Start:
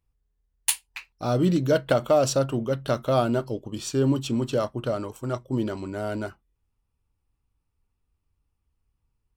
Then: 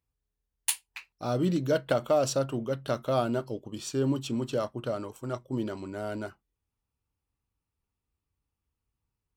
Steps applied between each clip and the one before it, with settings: HPF 91 Hz 6 dB/oct; gain -4.5 dB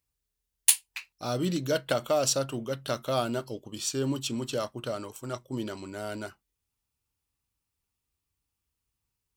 high shelf 2100 Hz +11 dB; gain -2.5 dB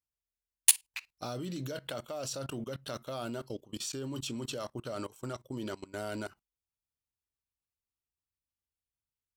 level quantiser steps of 20 dB; gain +2.5 dB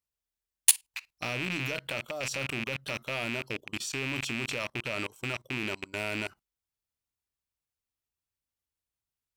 rattling part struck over -52 dBFS, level -23 dBFS; gain +1.5 dB

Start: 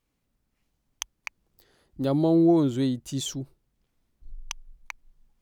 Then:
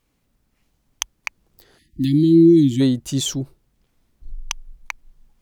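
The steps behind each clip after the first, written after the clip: spectral delete 1.78–2.8, 360–1700 Hz; gain +8.5 dB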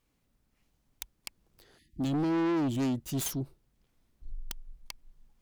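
self-modulated delay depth 0.41 ms; soft clip -19.5 dBFS, distortion -7 dB; gain -6.5 dB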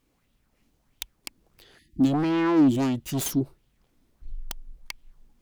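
LFO bell 1.5 Hz 250–3300 Hz +9 dB; gain +4 dB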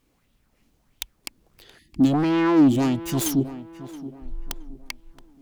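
tape echo 0.672 s, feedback 39%, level -13 dB, low-pass 1700 Hz; gain +3 dB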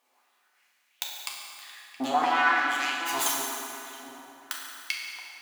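LFO high-pass saw up 1 Hz 720–2700 Hz; reverb RT60 2.8 s, pre-delay 4 ms, DRR -3.5 dB; gain -2.5 dB

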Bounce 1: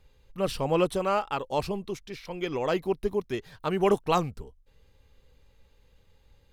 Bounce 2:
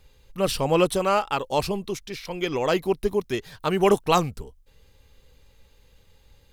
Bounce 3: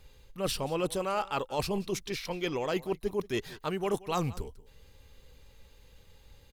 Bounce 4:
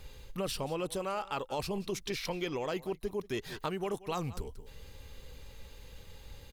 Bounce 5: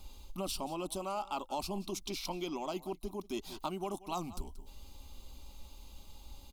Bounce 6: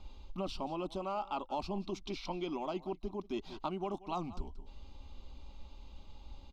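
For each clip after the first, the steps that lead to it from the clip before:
high shelf 3600 Hz +7 dB; gain +4 dB
reverse; compressor 6:1, threshold -28 dBFS, peak gain reduction 13.5 dB; reverse; echo 0.181 s -19.5 dB
compressor, threshold -39 dBFS, peak gain reduction 13.5 dB; gain +6.5 dB
fixed phaser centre 470 Hz, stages 6; gain +1 dB
air absorption 200 m; gain +1 dB

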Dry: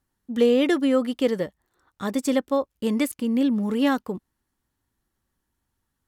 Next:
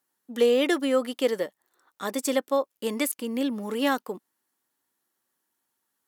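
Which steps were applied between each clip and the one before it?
HPF 360 Hz 12 dB/oct; high shelf 8200 Hz +8 dB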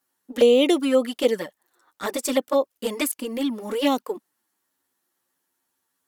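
envelope flanger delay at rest 11.3 ms, full sweep at -19 dBFS; gain +6 dB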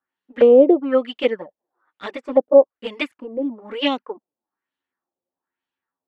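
LFO low-pass sine 1.1 Hz 540–3100 Hz; upward expander 1.5:1, over -35 dBFS; gain +3.5 dB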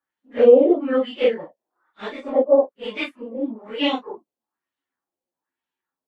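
phase scrambler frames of 0.1 s; gain -1 dB

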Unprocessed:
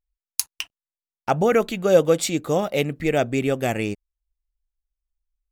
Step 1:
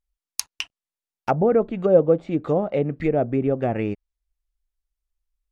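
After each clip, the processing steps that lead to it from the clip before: treble ducked by the level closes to 760 Hz, closed at -17.5 dBFS; gain +1 dB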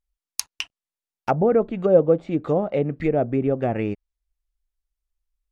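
nothing audible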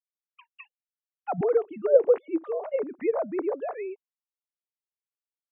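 sine-wave speech; gain -5 dB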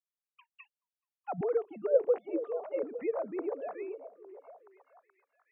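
delay with a stepping band-pass 0.427 s, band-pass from 390 Hz, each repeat 0.7 oct, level -10.5 dB; gain -7 dB

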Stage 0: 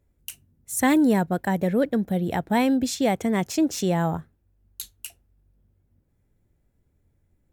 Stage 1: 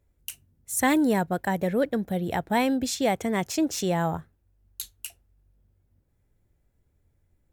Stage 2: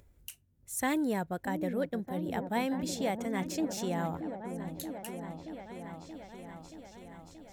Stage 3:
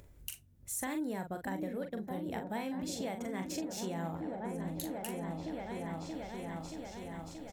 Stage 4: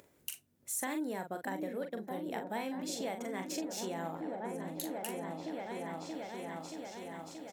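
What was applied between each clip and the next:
bell 220 Hz -4.5 dB 1.6 oct
upward compressor, threshold -41 dBFS; repeats that get brighter 0.628 s, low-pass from 400 Hz, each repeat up 1 oct, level -6 dB; gain -8.5 dB
compressor 6:1, threshold -41 dBFS, peak gain reduction 14 dB; doubler 42 ms -7 dB; gain +4.5 dB
HPF 260 Hz 12 dB/oct; gain +1.5 dB

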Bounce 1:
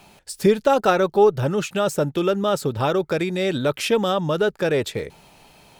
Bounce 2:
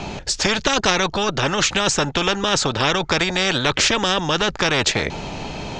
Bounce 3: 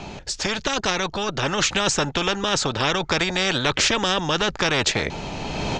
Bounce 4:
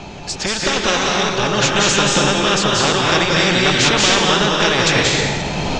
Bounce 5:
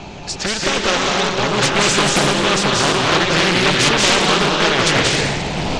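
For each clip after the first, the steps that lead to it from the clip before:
elliptic low-pass 6800 Hz, stop band 60 dB; low shelf 440 Hz +11 dB; spectral compressor 4:1; gain -2 dB
AGC gain up to 13 dB; gain -6 dB
reverb RT60 1.3 s, pre-delay 0.172 s, DRR -3 dB; gain +2.5 dB
Doppler distortion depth 0.62 ms

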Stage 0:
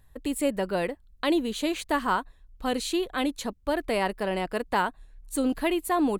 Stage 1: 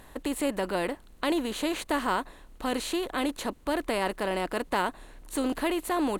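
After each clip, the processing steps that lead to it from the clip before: per-bin compression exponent 0.6; gain -5 dB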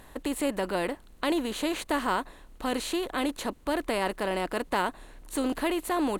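nothing audible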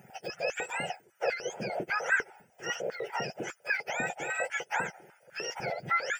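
spectrum mirrored in octaves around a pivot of 1200 Hz; fixed phaser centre 1100 Hz, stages 6; stepped high-pass 10 Hz 240–1600 Hz

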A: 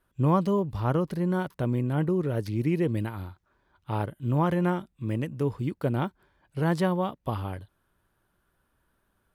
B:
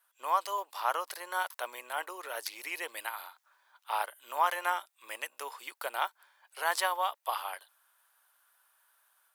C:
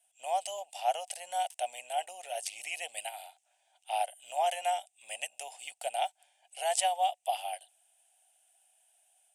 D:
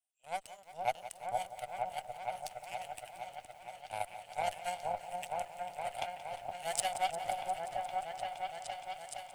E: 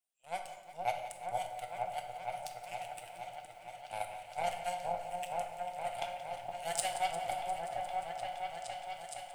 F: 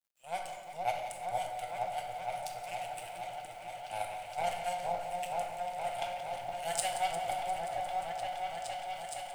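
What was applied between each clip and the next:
inverse Chebyshev high-pass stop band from 170 Hz, stop band 70 dB; high shelf 5400 Hz +11 dB; AGC gain up to 3.5 dB
EQ curve 180 Hz 0 dB, 370 Hz -23 dB, 730 Hz +10 dB, 1100 Hz -29 dB, 2800 Hz +4 dB, 4200 Hz -8 dB, 8600 Hz +10 dB, 14000 Hz -19 dB; gain +1.5 dB
added harmonics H 6 -30 dB, 7 -18 dB, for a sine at -13 dBFS; repeats that get brighter 0.467 s, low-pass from 750 Hz, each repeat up 1 oct, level 0 dB; lo-fi delay 0.176 s, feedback 80%, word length 9-bit, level -14 dB; gain -3 dB
reverb RT60 1.0 s, pre-delay 6 ms, DRR 4 dB; gain -1.5 dB
G.711 law mismatch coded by mu

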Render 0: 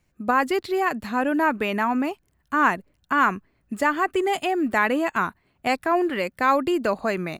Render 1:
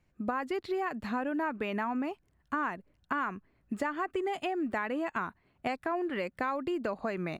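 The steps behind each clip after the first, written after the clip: LPF 3000 Hz 6 dB/oct; compressor, threshold -27 dBFS, peak gain reduction 12 dB; gain -2.5 dB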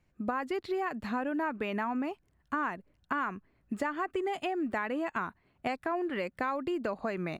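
nothing audible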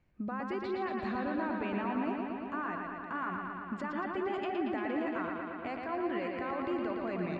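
limiter -29 dBFS, peak gain reduction 9.5 dB; air absorption 140 m; analogue delay 0.115 s, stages 4096, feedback 79%, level -4 dB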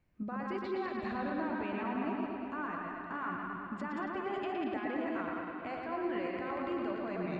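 reverse delay 0.108 s, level -3.5 dB; gain -3 dB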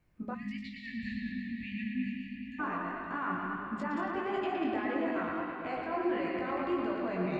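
chorus 1.6 Hz, delay 18 ms, depth 4 ms; spectral delete 0.34–2.6, 260–1700 Hz; de-hum 102.6 Hz, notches 30; gain +6.5 dB

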